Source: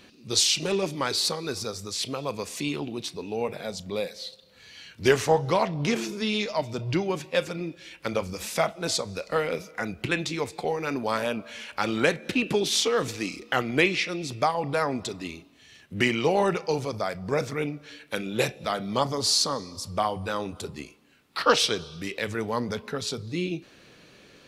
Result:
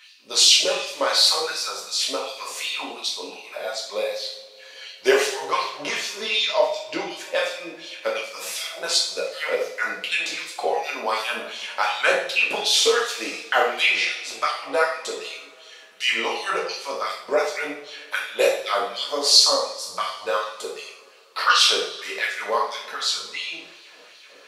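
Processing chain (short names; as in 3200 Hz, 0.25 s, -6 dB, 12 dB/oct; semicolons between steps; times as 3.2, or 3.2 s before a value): LFO high-pass sine 2.7 Hz 500–4000 Hz; two-slope reverb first 0.58 s, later 4 s, from -27 dB, DRR -4 dB; gain -1.5 dB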